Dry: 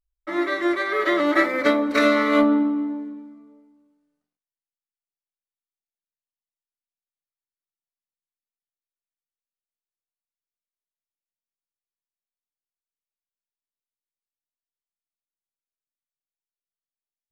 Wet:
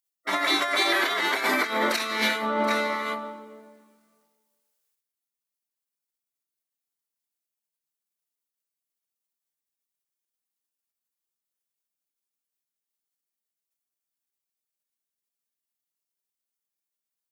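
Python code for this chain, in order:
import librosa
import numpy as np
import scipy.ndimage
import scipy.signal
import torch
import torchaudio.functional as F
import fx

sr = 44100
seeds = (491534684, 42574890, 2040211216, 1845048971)

y = scipy.signal.sosfilt(scipy.signal.bessel(2, 340.0, 'highpass', norm='mag', fs=sr, output='sos'), x)
y = y + 10.0 ** (-19.0 / 20.0) * np.pad(y, (int(731 * sr / 1000.0), 0))[:len(y)]
y = fx.spec_gate(y, sr, threshold_db=-10, keep='weak')
y = fx.over_compress(y, sr, threshold_db=-34.0, ratio=-1.0)
y = fx.high_shelf(y, sr, hz=5500.0, db=10.0)
y = F.gain(torch.from_numpy(y), 8.0).numpy()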